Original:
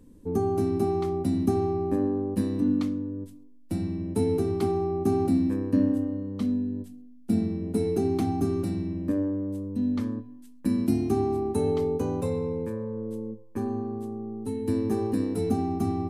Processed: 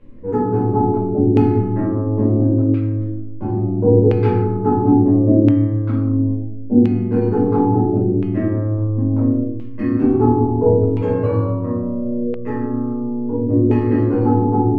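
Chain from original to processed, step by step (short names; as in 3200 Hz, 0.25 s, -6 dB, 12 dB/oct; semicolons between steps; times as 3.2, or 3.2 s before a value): shoebox room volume 390 m³, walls mixed, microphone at 4.7 m; LFO low-pass saw down 0.67 Hz 440–2400 Hz; speed mistake 44.1 kHz file played as 48 kHz; gain -3 dB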